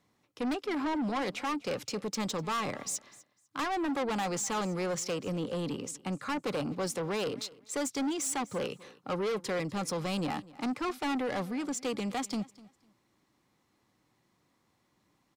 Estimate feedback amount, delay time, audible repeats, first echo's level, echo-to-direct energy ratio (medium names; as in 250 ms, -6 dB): 20%, 250 ms, 2, -21.0 dB, -21.0 dB